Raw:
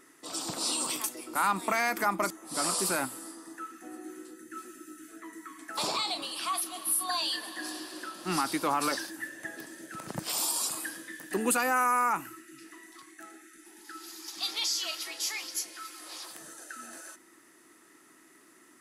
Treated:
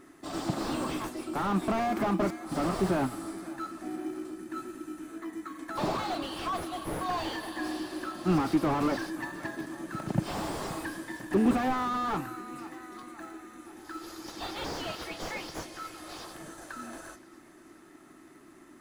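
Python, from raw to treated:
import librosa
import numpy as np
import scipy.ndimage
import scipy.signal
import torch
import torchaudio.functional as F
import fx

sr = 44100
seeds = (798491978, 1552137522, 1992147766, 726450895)

p1 = fx.low_shelf(x, sr, hz=120.0, db=12.0)
p2 = fx.notch_comb(p1, sr, f0_hz=480.0)
p3 = fx.sample_hold(p2, sr, seeds[0], rate_hz=2700.0, jitter_pct=0)
p4 = p2 + F.gain(torch.from_numpy(p3), -7.0).numpy()
p5 = fx.high_shelf(p4, sr, hz=3800.0, db=-9.0)
p6 = p5 + fx.echo_feedback(p5, sr, ms=524, feedback_pct=58, wet_db=-22, dry=0)
p7 = fx.slew_limit(p6, sr, full_power_hz=25.0)
y = F.gain(torch.from_numpy(p7), 3.5).numpy()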